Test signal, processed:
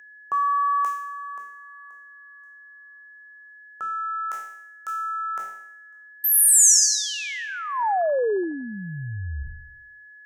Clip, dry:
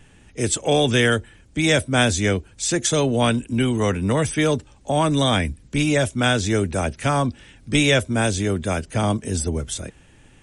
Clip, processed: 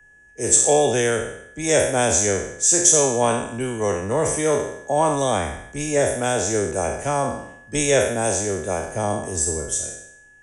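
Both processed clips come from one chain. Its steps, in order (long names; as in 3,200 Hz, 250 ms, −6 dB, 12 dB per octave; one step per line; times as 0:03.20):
peak hold with a decay on every bin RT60 0.88 s
flat-topped bell 600 Hz +8 dB
steady tone 1,700 Hz −31 dBFS
high shelf with overshoot 5,200 Hz +6.5 dB, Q 3
multiband upward and downward expander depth 40%
level −7.5 dB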